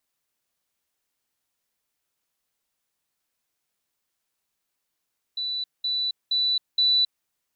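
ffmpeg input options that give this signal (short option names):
-f lavfi -i "aevalsrc='pow(10,(-26+3*floor(t/0.47))/20)*sin(2*PI*3970*t)*clip(min(mod(t,0.47),0.27-mod(t,0.47))/0.005,0,1)':d=1.88:s=44100"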